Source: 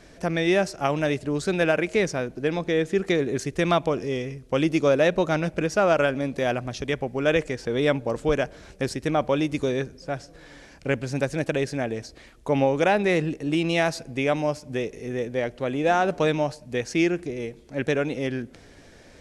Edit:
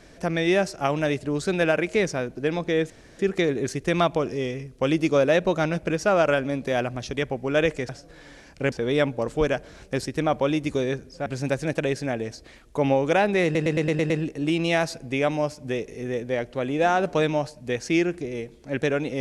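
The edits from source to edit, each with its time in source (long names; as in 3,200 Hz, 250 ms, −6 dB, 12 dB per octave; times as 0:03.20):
0:02.90: splice in room tone 0.29 s
0:10.14–0:10.97: move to 0:07.60
0:13.15: stutter 0.11 s, 7 plays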